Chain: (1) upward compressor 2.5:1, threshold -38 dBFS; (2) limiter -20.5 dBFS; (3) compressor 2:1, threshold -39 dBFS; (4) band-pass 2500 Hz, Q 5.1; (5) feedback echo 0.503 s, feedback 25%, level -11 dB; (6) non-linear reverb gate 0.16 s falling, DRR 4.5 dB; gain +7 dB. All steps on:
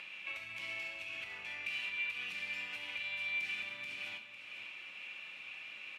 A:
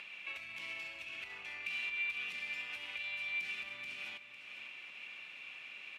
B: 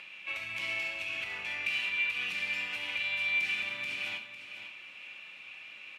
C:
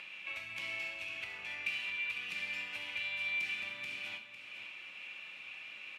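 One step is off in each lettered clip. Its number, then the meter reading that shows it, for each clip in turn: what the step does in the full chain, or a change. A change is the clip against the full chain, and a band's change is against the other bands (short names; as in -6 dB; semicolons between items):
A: 6, echo-to-direct -3.5 dB to -10.5 dB; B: 3, mean gain reduction 5.0 dB; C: 2, mean gain reduction 2.5 dB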